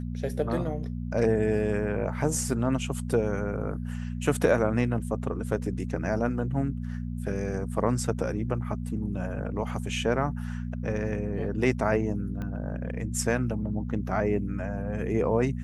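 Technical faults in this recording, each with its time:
hum 60 Hz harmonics 4 -33 dBFS
12.42 s: pop -24 dBFS

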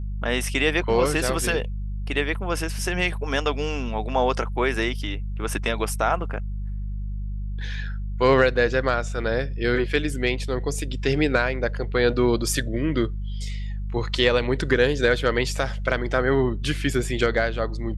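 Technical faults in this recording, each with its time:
hum 50 Hz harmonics 4 -29 dBFS

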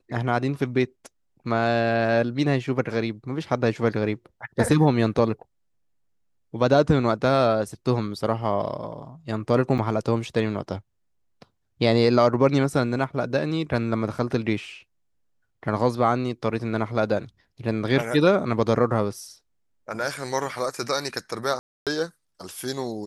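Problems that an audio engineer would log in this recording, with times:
9.78–9.79 s: dropout 6.3 ms
21.59–21.87 s: dropout 277 ms

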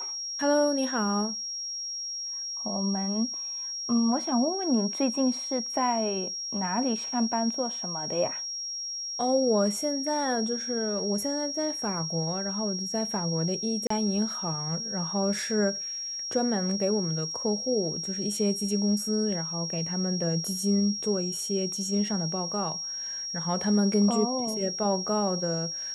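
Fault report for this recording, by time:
whine 5.6 kHz -32 dBFS
13.87–13.90 s: dropout 34 ms

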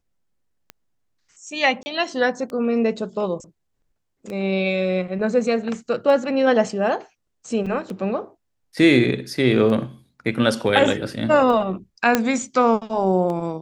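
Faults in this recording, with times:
tick 33 1/3 rpm -19 dBFS
1.83–1.86 s: dropout 30 ms
7.66–7.67 s: dropout 5.3 ms
12.15 s: pop -2 dBFS

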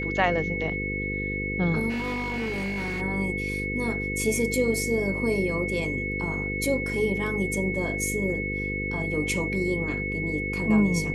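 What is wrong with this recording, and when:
buzz 50 Hz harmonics 10 -32 dBFS
whine 2.2 kHz -30 dBFS
1.89–3.02 s: clipped -26 dBFS

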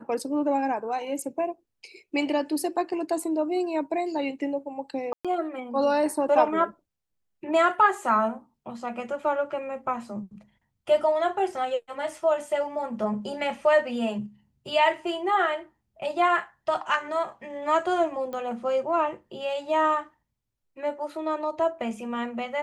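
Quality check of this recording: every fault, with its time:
5.13–5.25 s: dropout 116 ms
18.33 s: pop -23 dBFS

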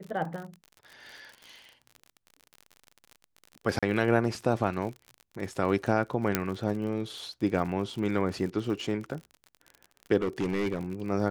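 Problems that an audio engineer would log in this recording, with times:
crackle 44 per s -36 dBFS
3.79–3.83 s: dropout 36 ms
6.35 s: pop -7 dBFS
10.22–10.79 s: clipped -24 dBFS

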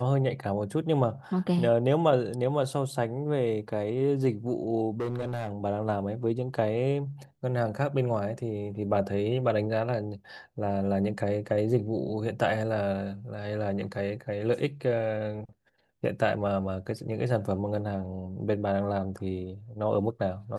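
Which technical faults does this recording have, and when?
5.00–5.52 s: clipped -26.5 dBFS

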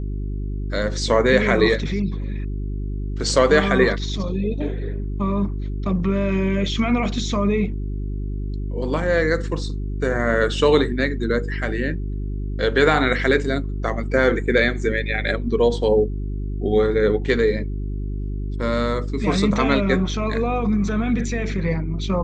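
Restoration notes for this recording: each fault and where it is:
hum 50 Hz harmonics 8 -26 dBFS

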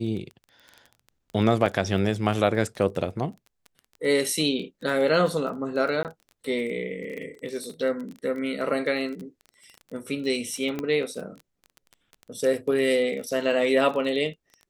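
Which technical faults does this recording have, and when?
crackle 21 per s -33 dBFS
1.66 s: dropout 3.2 ms
6.03–6.05 s: dropout 18 ms
10.79 s: pop -16 dBFS

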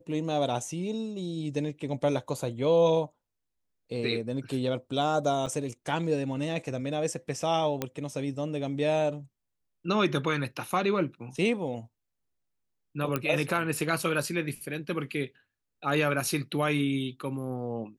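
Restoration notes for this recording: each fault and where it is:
5.46–5.47 s: dropout 5.6 ms
7.82 s: pop -14 dBFS
13.16 s: pop -14 dBFS

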